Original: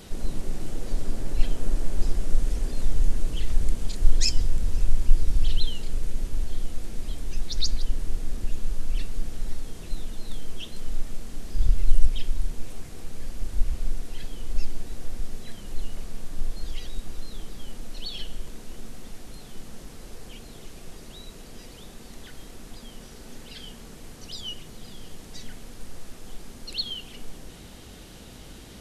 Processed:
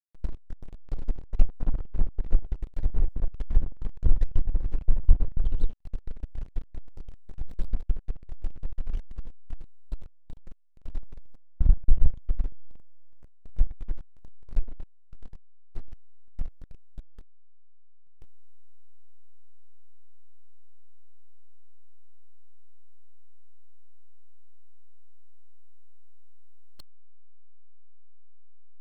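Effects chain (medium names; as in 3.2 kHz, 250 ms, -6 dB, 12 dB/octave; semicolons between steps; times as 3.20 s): low-pass that closes with the level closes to 1.1 kHz, closed at -12 dBFS; Chebyshev shaper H 2 -34 dB, 3 -16 dB, 4 -11 dB, 5 -40 dB, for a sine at -2 dBFS; hysteresis with a dead band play -19 dBFS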